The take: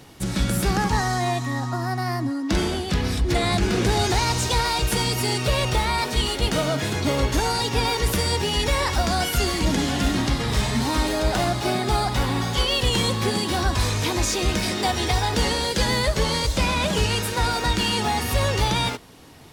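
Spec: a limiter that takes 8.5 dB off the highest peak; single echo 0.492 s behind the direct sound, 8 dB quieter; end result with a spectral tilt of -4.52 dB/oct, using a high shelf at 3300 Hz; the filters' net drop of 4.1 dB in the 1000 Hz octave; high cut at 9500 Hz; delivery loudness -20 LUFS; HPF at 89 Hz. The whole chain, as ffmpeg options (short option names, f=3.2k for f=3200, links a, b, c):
-af "highpass=89,lowpass=9.5k,equalizer=f=1k:t=o:g=-5,highshelf=f=3.3k:g=-4,alimiter=limit=-20dB:level=0:latency=1,aecho=1:1:492:0.398,volume=8dB"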